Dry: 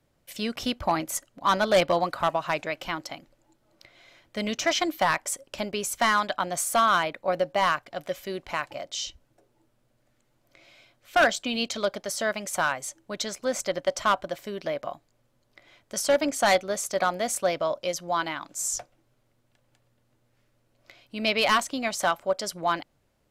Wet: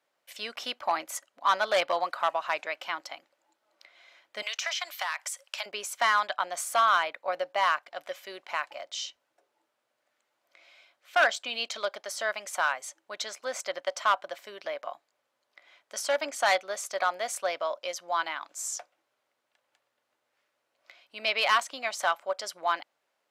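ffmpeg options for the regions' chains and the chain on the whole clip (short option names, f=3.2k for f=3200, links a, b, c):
-filter_complex "[0:a]asettb=1/sr,asplit=3[a][b][c];[a]atrim=end=4.424[d];[b]atrim=start=4.42:end=5.66,asetpts=PTS-STARTPTS,afade=t=in:d=0.004:c=qsin,afade=t=out:st=1.236:d=0.004:c=qsin,highpass=f=530:w=0.5412,highpass=f=530:w=1.3066,tiltshelf=f=880:g=-8,acompressor=threshold=-25dB:ratio=10:attack=3.2:release=140:knee=1:detection=peak[e];[c]atrim=start=5.656[f];[d][e]acrossfade=d=0.004:c1=hsin:c2=qsin[g];[g][f]acrossfade=d=0.004:c1=qsin:c2=hsin,highpass=740,highshelf=f=5.7k:g=-8.5"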